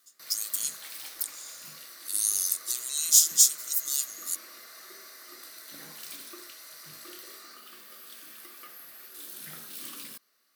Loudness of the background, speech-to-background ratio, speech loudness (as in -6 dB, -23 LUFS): -43.0 LUFS, 18.5 dB, -24.5 LUFS